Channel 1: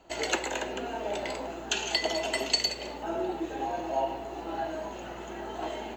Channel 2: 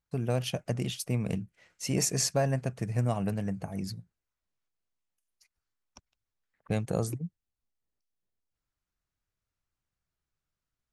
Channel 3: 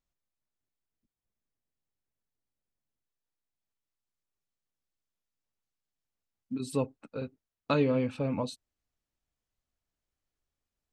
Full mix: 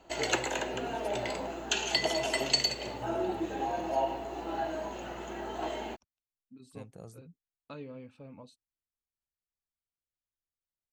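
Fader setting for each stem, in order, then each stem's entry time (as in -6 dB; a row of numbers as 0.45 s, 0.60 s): -0.5 dB, -18.5 dB, -18.0 dB; 0.00 s, 0.05 s, 0.00 s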